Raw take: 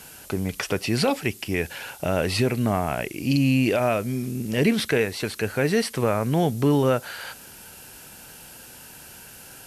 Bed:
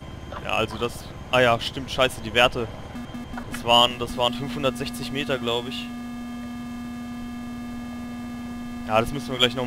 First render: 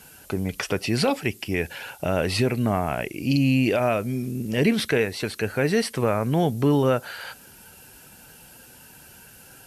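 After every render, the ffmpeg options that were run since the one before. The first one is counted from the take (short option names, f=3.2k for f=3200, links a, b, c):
-af "afftdn=nr=6:nf=-45"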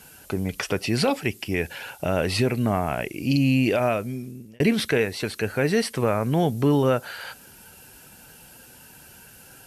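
-filter_complex "[0:a]asplit=2[a][b];[a]atrim=end=4.6,asetpts=PTS-STARTPTS,afade=t=out:st=3.86:d=0.74[c];[b]atrim=start=4.6,asetpts=PTS-STARTPTS,afade=t=in:d=0.004:c=hsin[d];[c][d]concat=n=2:v=0:a=1"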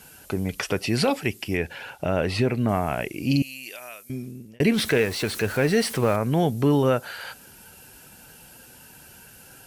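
-filter_complex "[0:a]asettb=1/sr,asplit=3[a][b][c];[a]atrim=end=1.574[d];[b]atrim=start=1.57:end=2.69,asetpts=PTS-STARTPTS,afade=t=in:d=0.004:c=qsin,afade=t=out:st=1.116:d=0.004:c=qsin,highshelf=f=5.5k:g=-11[e];[c]atrim=start=2.686[f];[d][e]acrossfade=d=0.004:c1=hsin:c2=qsin[g];[g][f]acrossfade=d=0.004:c1=qsin:c2=hsin,asettb=1/sr,asplit=3[h][i][j];[h]atrim=end=3.424[k];[i]atrim=start=3.42:end=4.1,asetpts=PTS-STARTPTS,afade=t=in:d=0.004:c=qsin,afade=t=out:st=0.676:d=0.004:c=qsin,aderivative[l];[j]atrim=start=4.096[m];[k][l]acrossfade=d=0.004:c1=hsin:c2=qsin[n];[n][m]acrossfade=d=0.004:c1=qsin:c2=hsin,asettb=1/sr,asplit=3[o][p][q];[o]atrim=end=4.744[r];[p]atrim=start=4.74:end=6.16,asetpts=PTS-STARTPTS,afade=t=in:d=0.004:c=qsin,afade=t=out:st=1.416:d=0.004:c=qsin,aeval=exprs='val(0)+0.5*0.0251*sgn(val(0))':c=same[s];[q]atrim=start=6.156[t];[r][s]acrossfade=d=0.004:c1=hsin:c2=qsin[u];[u][t]acrossfade=d=0.004:c1=qsin:c2=hsin"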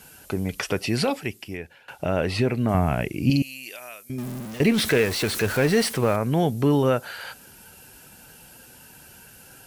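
-filter_complex "[0:a]asettb=1/sr,asplit=3[a][b][c];[a]atrim=end=2.744[d];[b]atrim=start=2.74:end=3.3,asetpts=PTS-STARTPTS,afade=t=in:d=0.004:c=qsin,afade=t=out:st=0.556:d=0.004:c=qsin,bass=f=250:g=9,treble=f=4k:g=-2[e];[c]atrim=start=3.296[f];[d][e]acrossfade=d=0.004:c1=hsin:c2=qsin[g];[g][f]acrossfade=d=0.004:c1=qsin:c2=hsin,asettb=1/sr,asplit=3[h][i][j];[h]atrim=end=4.184[k];[i]atrim=start=4.18:end=5.89,asetpts=PTS-STARTPTS,afade=t=in:d=0.004:c=qsin,afade=t=out:st=1.706:d=0.004:c=qsin,aeval=exprs='val(0)+0.5*0.0266*sgn(val(0))':c=same[l];[j]atrim=start=5.886[m];[k][l]acrossfade=d=0.004:c1=hsin:c2=qsin[n];[n][m]acrossfade=d=0.004:c1=qsin:c2=hsin,asplit=2[o][p];[o]atrim=end=1.88,asetpts=PTS-STARTPTS,afade=t=out:st=0.87:d=1.01:silence=0.0944061[q];[p]atrim=start=1.88,asetpts=PTS-STARTPTS,afade=t=in:d=0.004:c=hsin:silence=0.0944061[r];[q][r]concat=n=2:v=0:a=1"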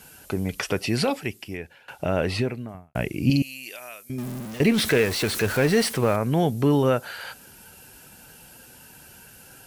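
-filter_complex "[0:a]asplit=2[a][b];[a]atrim=end=2.95,asetpts=PTS-STARTPTS,afade=t=out:st=2.34:d=0.61:c=qua[c];[b]atrim=start=2.95,asetpts=PTS-STARTPTS,afade=t=in:d=0.004:c=hsin[d];[c][d]concat=n=2:v=0:a=1"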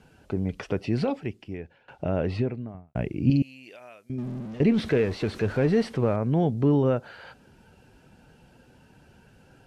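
-af "lowpass=2.8k,equalizer=f=1.9k:w=0.44:g=-9"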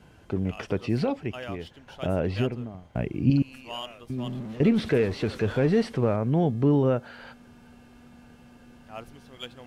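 -filter_complex "[1:a]volume=-20dB[a];[0:a][a]amix=inputs=2:normalize=0"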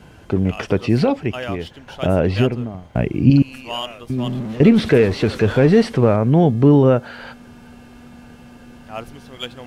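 -af "volume=9.5dB,alimiter=limit=-2dB:level=0:latency=1"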